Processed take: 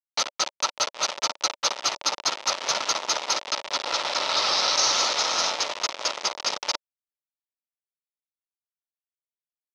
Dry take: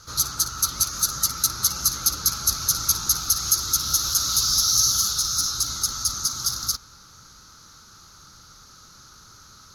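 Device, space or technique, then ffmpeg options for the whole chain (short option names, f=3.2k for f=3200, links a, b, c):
hand-held game console: -filter_complex "[0:a]asplit=3[a][b][c];[a]afade=t=out:st=3.39:d=0.02[d];[b]lowpass=f=5.3k:w=0.5412,lowpass=f=5.3k:w=1.3066,afade=t=in:st=3.39:d=0.02,afade=t=out:st=4.76:d=0.02[e];[c]afade=t=in:st=4.76:d=0.02[f];[d][e][f]amix=inputs=3:normalize=0,acrusher=bits=3:mix=0:aa=0.000001,highpass=440,equalizer=f=580:t=q:w=4:g=8,equalizer=f=920:t=q:w=4:g=7,equalizer=f=1.6k:t=q:w=4:g=-5,equalizer=f=4.4k:t=q:w=4:g=-4,lowpass=f=4.6k:w=0.5412,lowpass=f=4.6k:w=1.3066,volume=6.5dB"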